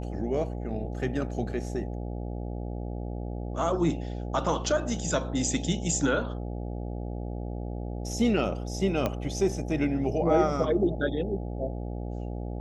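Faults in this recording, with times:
buzz 60 Hz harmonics 14 -34 dBFS
9.06 s: pop -14 dBFS

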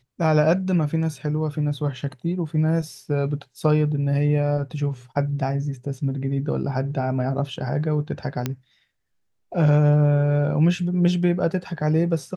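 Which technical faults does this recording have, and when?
8.46 s: pop -10 dBFS

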